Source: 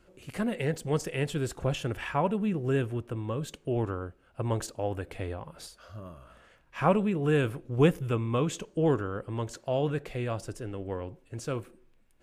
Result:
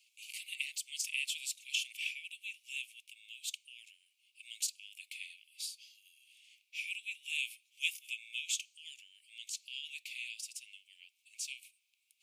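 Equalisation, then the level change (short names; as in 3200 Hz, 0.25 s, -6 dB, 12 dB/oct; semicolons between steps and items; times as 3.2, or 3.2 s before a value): steep high-pass 2300 Hz 96 dB/oct; +5.0 dB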